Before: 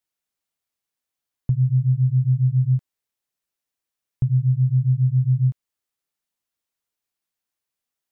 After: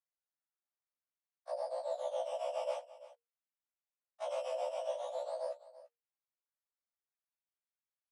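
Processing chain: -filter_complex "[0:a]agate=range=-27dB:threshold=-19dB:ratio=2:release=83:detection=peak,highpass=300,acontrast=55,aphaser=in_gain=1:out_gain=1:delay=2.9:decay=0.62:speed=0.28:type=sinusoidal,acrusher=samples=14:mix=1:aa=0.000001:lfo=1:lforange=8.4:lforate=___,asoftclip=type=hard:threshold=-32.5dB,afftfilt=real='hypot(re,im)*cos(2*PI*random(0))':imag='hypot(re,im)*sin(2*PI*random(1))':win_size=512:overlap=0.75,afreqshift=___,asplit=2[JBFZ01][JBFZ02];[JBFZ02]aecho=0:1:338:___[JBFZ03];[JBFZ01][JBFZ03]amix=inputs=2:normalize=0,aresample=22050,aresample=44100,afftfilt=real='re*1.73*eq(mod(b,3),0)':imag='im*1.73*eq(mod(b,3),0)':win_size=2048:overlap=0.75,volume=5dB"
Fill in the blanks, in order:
0.49, 470, 0.141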